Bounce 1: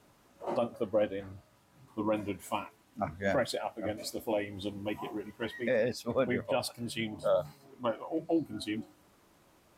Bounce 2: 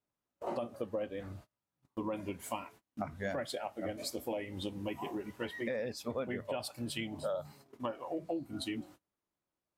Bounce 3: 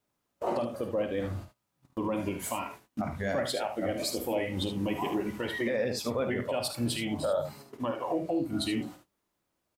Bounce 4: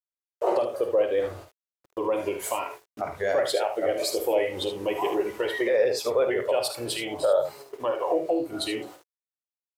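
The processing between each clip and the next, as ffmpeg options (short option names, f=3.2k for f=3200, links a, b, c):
-af "agate=range=-30dB:threshold=-53dB:ratio=16:detection=peak,acompressor=threshold=-37dB:ratio=4,volume=2dB"
-filter_complex "[0:a]alimiter=level_in=6.5dB:limit=-24dB:level=0:latency=1:release=54,volume=-6.5dB,asplit=2[a][b];[b]aecho=0:1:51|75:0.299|0.355[c];[a][c]amix=inputs=2:normalize=0,volume=9dB"
-af "aeval=exprs='val(0)*gte(abs(val(0)),0.00133)':c=same,lowshelf=f=310:t=q:w=3:g=-10,volume=3.5dB"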